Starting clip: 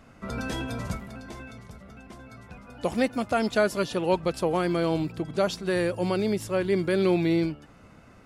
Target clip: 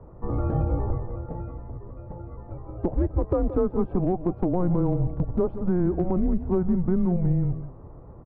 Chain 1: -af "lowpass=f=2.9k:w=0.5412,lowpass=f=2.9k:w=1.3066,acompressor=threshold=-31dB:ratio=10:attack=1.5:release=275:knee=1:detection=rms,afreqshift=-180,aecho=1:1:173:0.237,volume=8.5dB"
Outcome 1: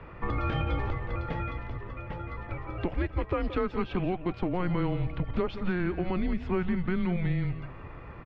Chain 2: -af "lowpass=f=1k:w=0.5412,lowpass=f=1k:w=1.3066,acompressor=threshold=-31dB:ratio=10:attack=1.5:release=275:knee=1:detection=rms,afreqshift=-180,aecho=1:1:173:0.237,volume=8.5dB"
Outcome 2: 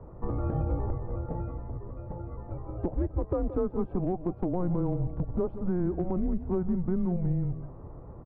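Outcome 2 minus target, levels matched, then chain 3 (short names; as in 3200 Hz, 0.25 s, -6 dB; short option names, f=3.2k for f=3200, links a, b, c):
compressor: peak gain reduction +5.5 dB
-af "lowpass=f=1k:w=0.5412,lowpass=f=1k:w=1.3066,acompressor=threshold=-25dB:ratio=10:attack=1.5:release=275:knee=1:detection=rms,afreqshift=-180,aecho=1:1:173:0.237,volume=8.5dB"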